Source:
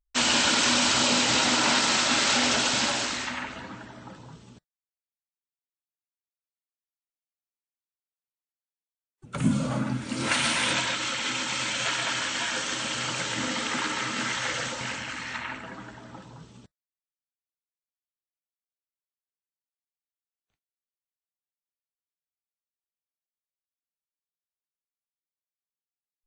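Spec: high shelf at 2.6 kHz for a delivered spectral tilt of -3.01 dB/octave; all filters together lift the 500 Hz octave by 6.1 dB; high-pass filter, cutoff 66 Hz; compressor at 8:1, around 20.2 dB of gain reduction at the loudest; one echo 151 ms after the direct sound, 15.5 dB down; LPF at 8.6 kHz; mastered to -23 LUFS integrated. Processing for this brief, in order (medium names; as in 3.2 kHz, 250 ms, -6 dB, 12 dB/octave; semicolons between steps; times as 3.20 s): high-pass 66 Hz; low-pass 8.6 kHz; peaking EQ 500 Hz +7.5 dB; treble shelf 2.6 kHz -3 dB; compression 8:1, threshold -39 dBFS; delay 151 ms -15.5 dB; trim +18 dB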